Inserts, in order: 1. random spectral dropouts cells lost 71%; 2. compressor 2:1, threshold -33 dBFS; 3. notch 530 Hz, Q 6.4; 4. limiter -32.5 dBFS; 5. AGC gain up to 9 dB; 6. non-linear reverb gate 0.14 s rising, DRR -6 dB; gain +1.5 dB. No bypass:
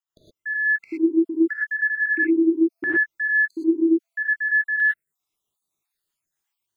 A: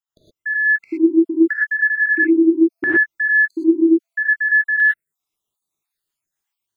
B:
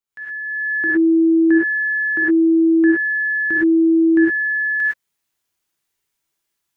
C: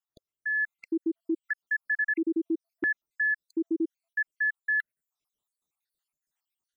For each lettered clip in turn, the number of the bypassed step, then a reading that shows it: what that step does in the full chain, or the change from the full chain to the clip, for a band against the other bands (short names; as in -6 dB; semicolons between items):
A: 4, mean gain reduction 4.5 dB; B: 1, crest factor change -2.0 dB; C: 6, momentary loudness spread change +1 LU